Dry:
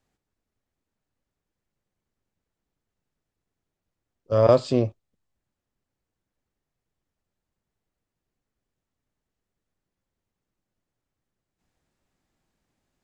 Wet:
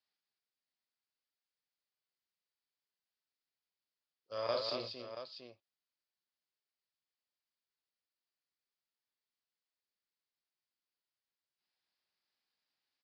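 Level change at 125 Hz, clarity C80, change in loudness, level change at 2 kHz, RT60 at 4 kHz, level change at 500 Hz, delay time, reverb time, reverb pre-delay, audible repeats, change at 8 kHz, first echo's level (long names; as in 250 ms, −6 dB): −30.0 dB, no reverb audible, −18.0 dB, −7.5 dB, no reverb audible, −18.0 dB, 42 ms, no reverb audible, no reverb audible, 4, can't be measured, −6.0 dB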